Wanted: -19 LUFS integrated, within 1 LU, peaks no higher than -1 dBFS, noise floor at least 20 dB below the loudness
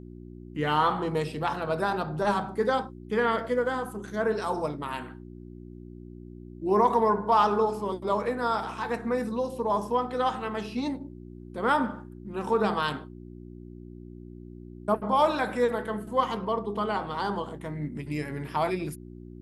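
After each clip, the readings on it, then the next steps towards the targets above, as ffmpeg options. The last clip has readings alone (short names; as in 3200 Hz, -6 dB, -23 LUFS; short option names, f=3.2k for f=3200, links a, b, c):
hum 60 Hz; harmonics up to 360 Hz; hum level -41 dBFS; loudness -28.0 LUFS; peak -10.5 dBFS; loudness target -19.0 LUFS
-> -af "bandreject=f=60:t=h:w=4,bandreject=f=120:t=h:w=4,bandreject=f=180:t=h:w=4,bandreject=f=240:t=h:w=4,bandreject=f=300:t=h:w=4,bandreject=f=360:t=h:w=4"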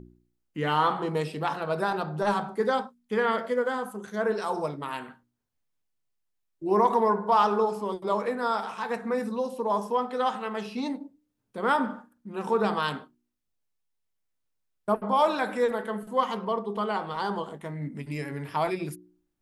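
hum none; loudness -28.0 LUFS; peak -10.5 dBFS; loudness target -19.0 LUFS
-> -af "volume=9dB"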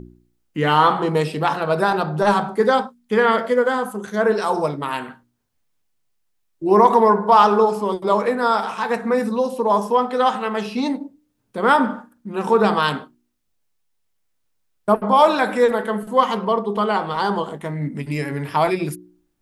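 loudness -19.0 LUFS; peak -1.5 dBFS; noise floor -69 dBFS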